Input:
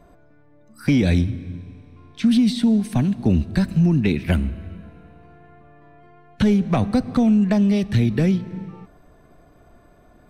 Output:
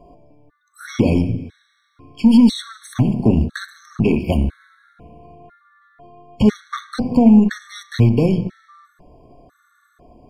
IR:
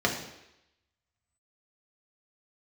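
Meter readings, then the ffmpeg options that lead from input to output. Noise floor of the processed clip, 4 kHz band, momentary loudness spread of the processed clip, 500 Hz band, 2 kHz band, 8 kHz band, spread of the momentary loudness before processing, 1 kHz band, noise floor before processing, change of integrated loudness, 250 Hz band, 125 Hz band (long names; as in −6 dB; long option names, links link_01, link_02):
−63 dBFS, +1.0 dB, 18 LU, +3.5 dB, 0.0 dB, can't be measured, 15 LU, +2.5 dB, −52 dBFS, +3.0 dB, +2.5 dB, +1.0 dB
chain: -filter_complex "[0:a]asplit=2[link_01][link_02];[1:a]atrim=start_sample=2205,afade=type=out:start_time=0.27:duration=0.01,atrim=end_sample=12348[link_03];[link_02][link_03]afir=irnorm=-1:irlink=0,volume=-18.5dB[link_04];[link_01][link_04]amix=inputs=2:normalize=0,aeval=exprs='0.596*(cos(1*acos(clip(val(0)/0.596,-1,1)))-cos(1*PI/2))+0.0266*(cos(8*acos(clip(val(0)/0.596,-1,1)))-cos(8*PI/2))':channel_layout=same,afftfilt=real='re*gt(sin(2*PI*1*pts/sr)*(1-2*mod(floor(b*sr/1024/1100),2)),0)':imag='im*gt(sin(2*PI*1*pts/sr)*(1-2*mod(floor(b*sr/1024/1100),2)),0)':win_size=1024:overlap=0.75,volume=3dB"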